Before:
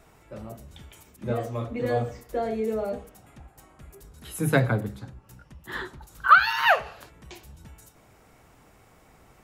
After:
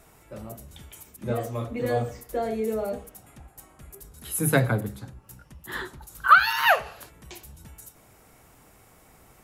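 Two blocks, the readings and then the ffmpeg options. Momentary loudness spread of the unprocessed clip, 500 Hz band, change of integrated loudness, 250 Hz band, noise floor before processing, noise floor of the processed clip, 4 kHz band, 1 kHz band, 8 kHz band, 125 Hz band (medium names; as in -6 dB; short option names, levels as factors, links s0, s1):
24 LU, 0.0 dB, 0.0 dB, 0.0 dB, -57 dBFS, -56 dBFS, +1.0 dB, 0.0 dB, +8.5 dB, 0.0 dB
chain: -af "equalizer=f=12000:t=o:w=1.1:g=10.5"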